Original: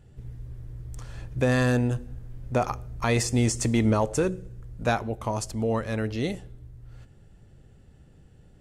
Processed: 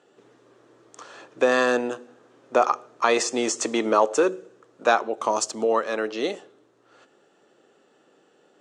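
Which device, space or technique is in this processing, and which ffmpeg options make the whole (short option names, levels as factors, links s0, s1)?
phone speaker on a table: -filter_complex "[0:a]highpass=f=330:w=0.5412,highpass=f=330:w=1.3066,equalizer=f=1200:t=q:w=4:g=6,equalizer=f=2100:t=q:w=4:g=-5,equalizer=f=4900:t=q:w=4:g=-4,lowpass=f=7200:w=0.5412,lowpass=f=7200:w=1.3066,asettb=1/sr,asplit=3[s0][s1][s2];[s0]atrim=end=5.174[s3];[s1]atrim=start=5.17:end=5.65,asetpts=PTS-STARTPTS,afade=t=in:d=0.004:c=qsin,afade=t=out:st=0.476:d=0.004:c=qsin,bass=f=250:g=7,treble=f=4000:g=7[s4];[s2]atrim=start=5.646[s5];[s3][s4]acrossfade=d=0.004:c1=hsin:c2=qsin[s6];[s6][s5]acrossfade=d=0.004:c1=qsin:c2=hsin,volume=2"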